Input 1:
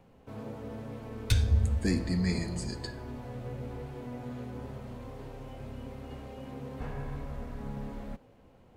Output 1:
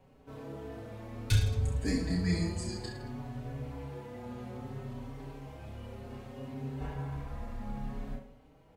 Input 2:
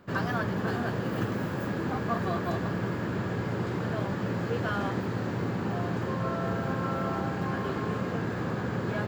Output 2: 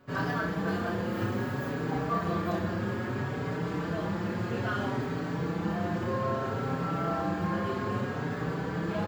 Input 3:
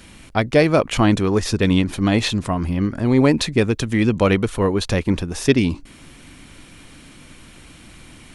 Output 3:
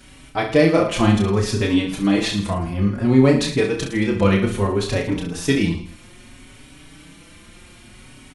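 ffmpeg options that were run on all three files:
ffmpeg -i in.wav -filter_complex "[0:a]aecho=1:1:30|66|109.2|161|223.2:0.631|0.398|0.251|0.158|0.1,asplit=2[link_01][link_02];[link_02]adelay=4.9,afreqshift=0.61[link_03];[link_01][link_03]amix=inputs=2:normalize=1" out.wav

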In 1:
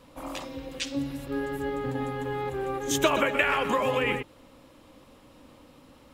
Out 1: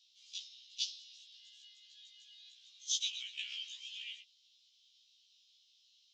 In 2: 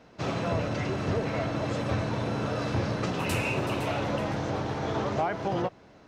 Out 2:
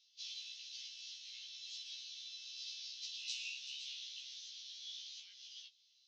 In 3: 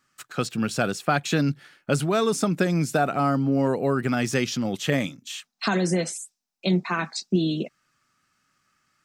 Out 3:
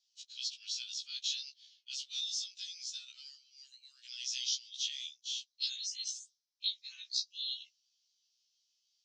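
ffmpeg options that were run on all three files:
ffmpeg -i in.wav -af "asuperpass=centerf=4500:order=8:qfactor=1.4,afftfilt=real='re*1.73*eq(mod(b,3),0)':imag='im*1.73*eq(mod(b,3),0)':win_size=2048:overlap=0.75,volume=2dB" out.wav

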